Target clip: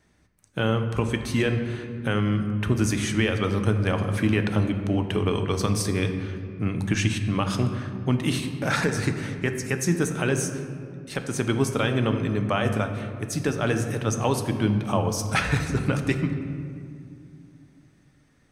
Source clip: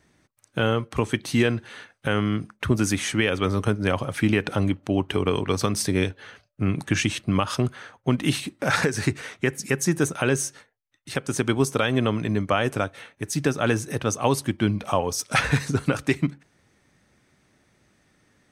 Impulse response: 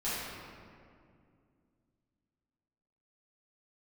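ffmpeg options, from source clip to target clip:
-filter_complex "[0:a]asplit=2[s0][s1];[1:a]atrim=start_sample=2205,lowshelf=f=160:g=11.5[s2];[s1][s2]afir=irnorm=-1:irlink=0,volume=0.237[s3];[s0][s3]amix=inputs=2:normalize=0,volume=0.631"

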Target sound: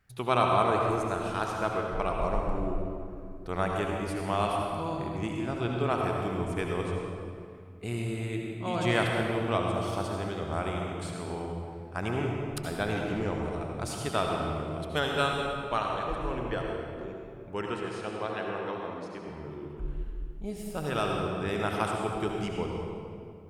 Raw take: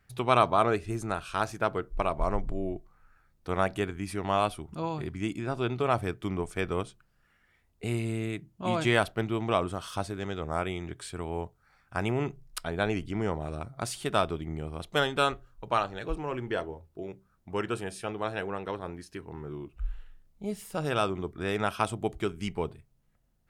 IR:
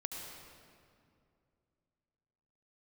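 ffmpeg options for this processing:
-filter_complex "[0:a]asettb=1/sr,asplit=3[s0][s1][s2];[s0]atrim=end=16.614[s3];[s1]atrim=start=16.61:end=17.04,asetpts=PTS-STARTPTS,afade=t=in:d=0.004:c=qsin,afade=t=out:st=0.426:d=0.004:c=qsin,volume=56.2,asoftclip=hard,volume=0.0178[s4];[s2]atrim=start=17.036[s5];[s3][s4]acrossfade=d=0.004:c1=hsin:c2=qsin[s6];[s6][s5]acrossfade=d=0.004:c1=qsin:c2=hsin,asettb=1/sr,asplit=3[s7][s8][s9];[s7]atrim=end=17.694[s10];[s8]atrim=start=17.69:end=19.28,asetpts=PTS-STARTPTS,afade=t=in:d=0.004:c=qsin,afade=t=out:st=1.586:d=0.004:c=qsin,highpass=140,lowpass=6300[s11];[s9]atrim=start=19.276[s12];[s10][s11]acrossfade=d=0.004:c1=hsin:c2=qsin[s13];[s13][s12]acrossfade=d=0.004:c1=qsin:c2=hsin[s14];[1:a]atrim=start_sample=2205[s15];[s14][s15]afir=irnorm=-1:irlink=0"

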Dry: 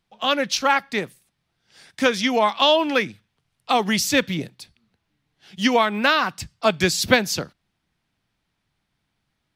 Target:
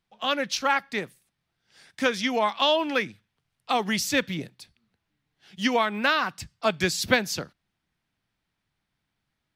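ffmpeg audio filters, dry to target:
-af "equalizer=f=1700:w=1.5:g=2,volume=0.531"

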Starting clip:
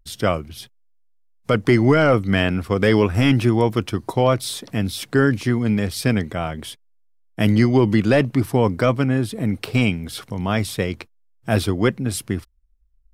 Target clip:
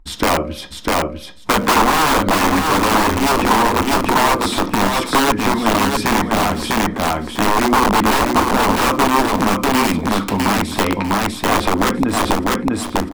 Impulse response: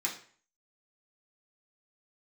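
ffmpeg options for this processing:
-filter_complex "[0:a]bandreject=f=59.7:t=h:w=4,bandreject=f=119.4:t=h:w=4,bandreject=f=179.1:t=h:w=4,bandreject=f=238.8:t=h:w=4,bandreject=f=298.5:t=h:w=4,bandreject=f=358.2:t=h:w=4,bandreject=f=417.9:t=h:w=4,bandreject=f=477.6:t=h:w=4,bandreject=f=537.3:t=h:w=4,bandreject=f=597:t=h:w=4,alimiter=limit=0.299:level=0:latency=1:release=13,lowpass=f=3300:p=1,asplit=2[s0][s1];[1:a]atrim=start_sample=2205,afade=t=out:st=0.15:d=0.01,atrim=end_sample=7056[s2];[s1][s2]afir=irnorm=-1:irlink=0,volume=0.398[s3];[s0][s3]amix=inputs=2:normalize=0,aeval=exprs='(mod(6.31*val(0)+1,2)-1)/6.31':c=same,lowshelf=f=190:g=9.5,aecho=1:1:649|1298|1947:0.631|0.107|0.0182,acompressor=threshold=0.0794:ratio=6,equalizer=f=125:t=o:w=1:g=-12,equalizer=f=250:t=o:w=1:g=7,equalizer=f=1000:t=o:w=1:g=11,volume=2.24"

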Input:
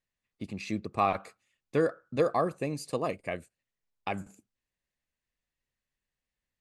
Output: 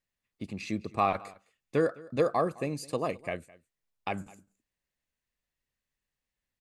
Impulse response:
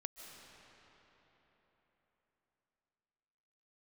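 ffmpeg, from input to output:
-af "aecho=1:1:210:0.0794"

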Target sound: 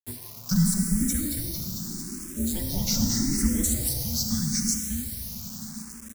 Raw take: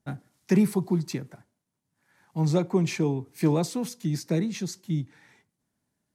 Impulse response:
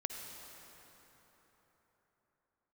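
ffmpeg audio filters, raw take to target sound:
-filter_complex "[0:a]equalizer=f=940:t=o:w=0.43:g=-3.5,asplit=3[s0][s1][s2];[s0]afade=t=out:st=0.99:d=0.02[s3];[s1]asplit=8[s4][s5][s6][s7][s8][s9][s10][s11];[s5]adelay=225,afreqshift=-40,volume=0.596[s12];[s6]adelay=450,afreqshift=-80,volume=0.32[s13];[s7]adelay=675,afreqshift=-120,volume=0.174[s14];[s8]adelay=900,afreqshift=-160,volume=0.0933[s15];[s9]adelay=1125,afreqshift=-200,volume=0.0507[s16];[s10]adelay=1350,afreqshift=-240,volume=0.0272[s17];[s11]adelay=1575,afreqshift=-280,volume=0.0148[s18];[s4][s12][s13][s14][s15][s16][s17][s18]amix=inputs=8:normalize=0,afade=t=in:st=0.99:d=0.02,afade=t=out:st=3.36:d=0.02[s19];[s2]afade=t=in:st=3.36:d=0.02[s20];[s3][s19][s20]amix=inputs=3:normalize=0[s21];[1:a]atrim=start_sample=2205[s22];[s21][s22]afir=irnorm=-1:irlink=0,afreqshift=-380,acrusher=bits=7:mix=0:aa=0.000001,aexciter=amount=8.1:drive=3.4:freq=4600,asplit=2[s23][s24];[s24]afreqshift=0.8[s25];[s23][s25]amix=inputs=2:normalize=1,volume=1.12"

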